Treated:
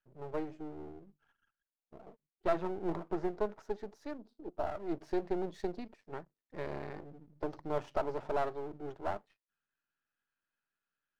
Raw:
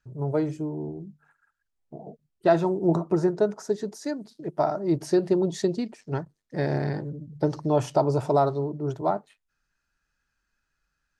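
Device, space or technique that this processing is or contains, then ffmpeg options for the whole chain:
crystal radio: -filter_complex "[0:a]highpass=250,lowpass=3000,aeval=exprs='if(lt(val(0),0),0.251*val(0),val(0))':channel_layout=same,asettb=1/sr,asplit=3[link_01][link_02][link_03];[link_01]atrim=end=4.184[link_04];[link_02]atrim=start=4.18:end=4.66,asetpts=PTS-STARTPTS,afade=type=in:duration=0.004:curve=qsin,afade=type=out:start_time=0.476:duration=0.004:curve=qsin,equalizer=frequency=125:width_type=o:width=1:gain=-10,equalizer=frequency=250:width_type=o:width=1:gain=7,equalizer=frequency=2000:width_type=o:width=1:gain=-11,equalizer=frequency=8000:width_type=o:width=1:gain=-7[link_05];[link_03]atrim=start=4.656[link_06];[link_04][link_05]acrossfade=duration=0.004:curve1=hsin:curve2=qsin[link_07];[link_07][link_06]acrossfade=duration=0.004:curve1=qsin:curve2=hsin,volume=-7.5dB"

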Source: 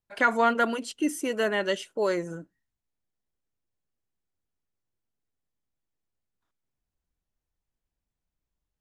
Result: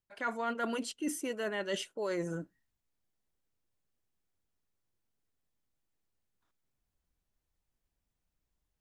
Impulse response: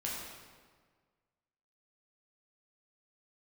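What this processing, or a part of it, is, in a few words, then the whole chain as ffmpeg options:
compression on the reversed sound: -af "areverse,acompressor=threshold=-34dB:ratio=6,areverse,volume=1.5dB"

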